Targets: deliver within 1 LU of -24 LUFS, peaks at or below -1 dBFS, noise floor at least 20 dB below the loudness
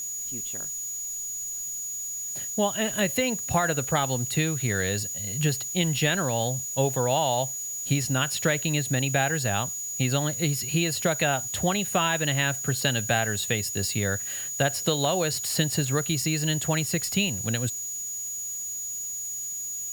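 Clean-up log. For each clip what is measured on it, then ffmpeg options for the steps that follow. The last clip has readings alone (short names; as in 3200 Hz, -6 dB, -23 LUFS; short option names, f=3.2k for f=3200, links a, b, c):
steady tone 6800 Hz; tone level -31 dBFS; noise floor -34 dBFS; noise floor target -46 dBFS; loudness -26.0 LUFS; peak -8.0 dBFS; loudness target -24.0 LUFS
-> -af "bandreject=f=6.8k:w=30"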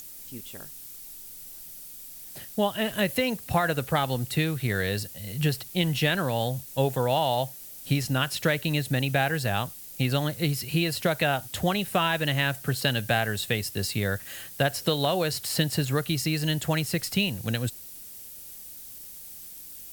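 steady tone none; noise floor -43 dBFS; noise floor target -47 dBFS
-> -af "afftdn=nr=6:nf=-43"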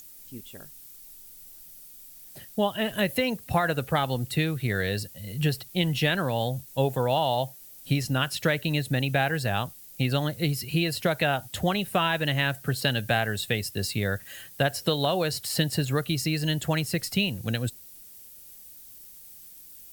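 noise floor -48 dBFS; loudness -27.0 LUFS; peak -8.5 dBFS; loudness target -24.0 LUFS
-> -af "volume=3dB"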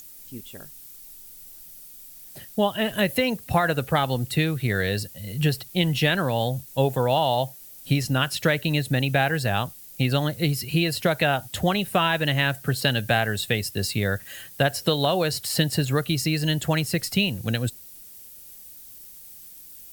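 loudness -24.0 LUFS; peak -5.5 dBFS; noise floor -45 dBFS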